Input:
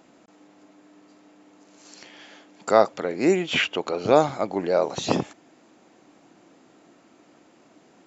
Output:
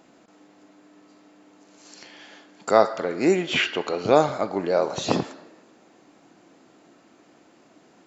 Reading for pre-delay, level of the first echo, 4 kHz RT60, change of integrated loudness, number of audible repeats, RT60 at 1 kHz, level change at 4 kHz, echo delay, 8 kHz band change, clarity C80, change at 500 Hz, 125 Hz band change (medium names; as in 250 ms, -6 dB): 3 ms, no echo, 0.75 s, 0.0 dB, no echo, 1.1 s, +0.5 dB, no echo, no reading, 14.5 dB, 0.0 dB, 0.0 dB